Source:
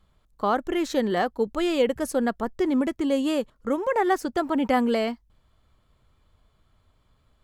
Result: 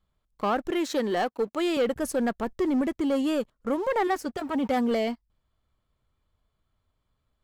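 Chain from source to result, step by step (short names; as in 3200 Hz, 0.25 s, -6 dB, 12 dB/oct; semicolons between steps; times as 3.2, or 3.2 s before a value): 0.7–1.77 HPF 230 Hz 12 dB/oct; sample leveller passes 2; 4.07–4.91 notch comb 340 Hz; gain -7.5 dB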